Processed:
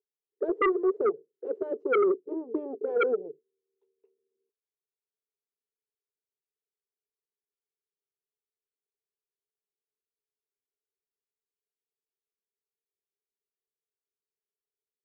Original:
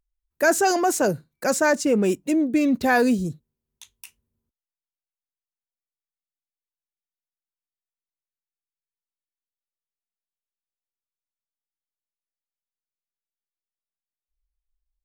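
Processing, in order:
harmonic generator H 7 −10 dB, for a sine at −8.5 dBFS
flat-topped band-pass 420 Hz, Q 6.1
sine wavefolder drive 11 dB, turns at −17.5 dBFS
level −2 dB

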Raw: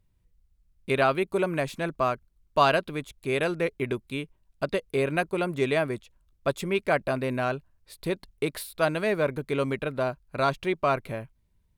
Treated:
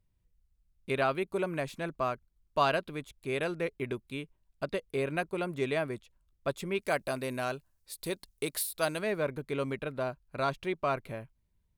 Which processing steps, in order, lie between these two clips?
0:06.81–0:08.99: bass and treble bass −3 dB, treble +12 dB
level −6 dB

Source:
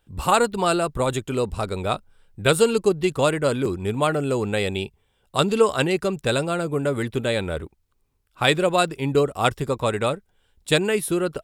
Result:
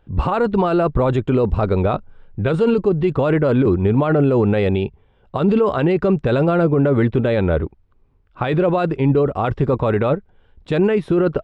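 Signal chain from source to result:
in parallel at +3 dB: compressor whose output falls as the input rises −24 dBFS, ratio −0.5
on the sum: brickwall limiter −8 dBFS, peak gain reduction 7 dB
head-to-tape spacing loss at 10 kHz 42 dB
level +3 dB

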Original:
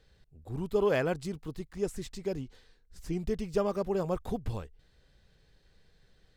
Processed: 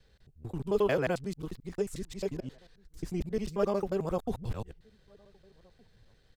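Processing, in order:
reversed piece by piece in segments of 89 ms
slap from a distant wall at 260 metres, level −29 dB

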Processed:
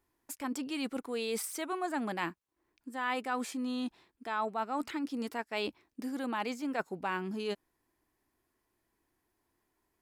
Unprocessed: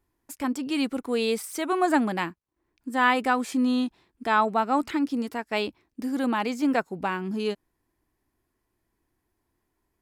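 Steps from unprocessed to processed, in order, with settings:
reversed playback
downward compressor 6 to 1, threshold −30 dBFS, peak gain reduction 13.5 dB
reversed playback
low-shelf EQ 210 Hz −8.5 dB

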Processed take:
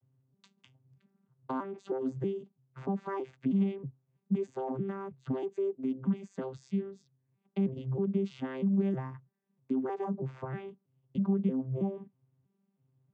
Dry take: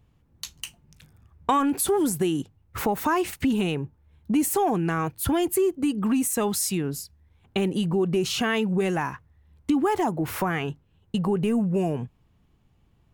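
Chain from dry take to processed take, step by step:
vocoder with an arpeggio as carrier bare fifth, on C3, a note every 319 ms
low-pass filter 2,900 Hz 6 dB per octave
level −7.5 dB

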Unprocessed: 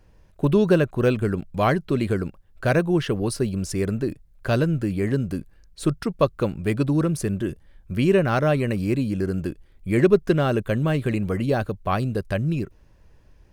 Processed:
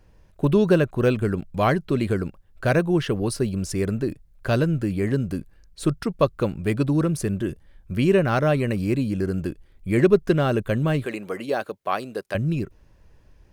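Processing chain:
0:11.05–0:12.35: high-pass filter 380 Hz 12 dB per octave

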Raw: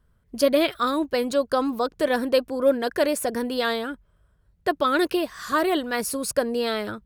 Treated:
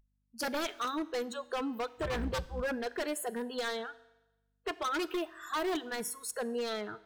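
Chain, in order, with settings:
0:02.01–0:02.62: sub-octave generator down 2 octaves, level +2 dB
mains hum 50 Hz, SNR 18 dB
noise reduction from a noise print of the clip's start 28 dB
wave folding −19 dBFS
on a send: convolution reverb RT60 0.95 s, pre-delay 7 ms, DRR 16 dB
on the sum: level −8.5 dB

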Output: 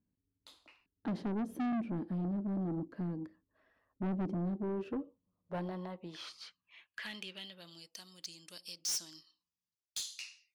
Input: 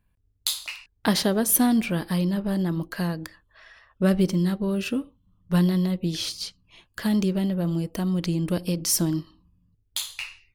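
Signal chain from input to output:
band-pass filter sweep 270 Hz → 5,700 Hz, 0:04.48–0:08.08
soft clipping −32 dBFS, distortion −6 dB

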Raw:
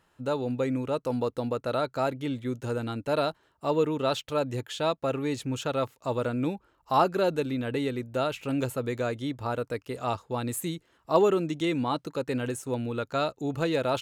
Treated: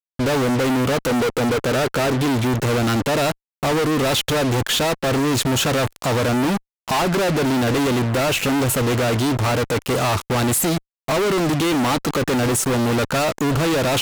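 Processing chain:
0:01.09–0:02.16: parametric band 420 Hz +9.5 dB 0.68 octaves
downward compressor 5 to 1, threshold −26 dBFS, peak gain reduction 9 dB
fuzz pedal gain 55 dB, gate −50 dBFS
level −4.5 dB

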